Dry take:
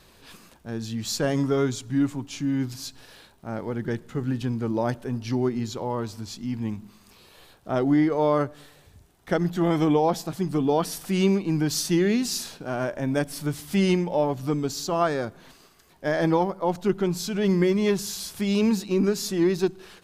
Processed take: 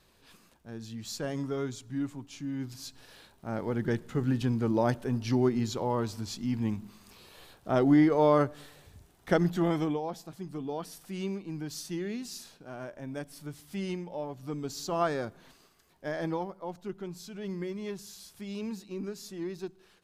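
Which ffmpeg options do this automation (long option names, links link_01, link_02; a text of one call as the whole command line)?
ffmpeg -i in.wav -af "volume=7.5dB,afade=type=in:start_time=2.55:duration=1.24:silence=0.354813,afade=type=out:start_time=9.37:duration=0.64:silence=0.237137,afade=type=in:start_time=14.38:duration=0.66:silence=0.375837,afade=type=out:start_time=15.04:duration=1.75:silence=0.316228" out.wav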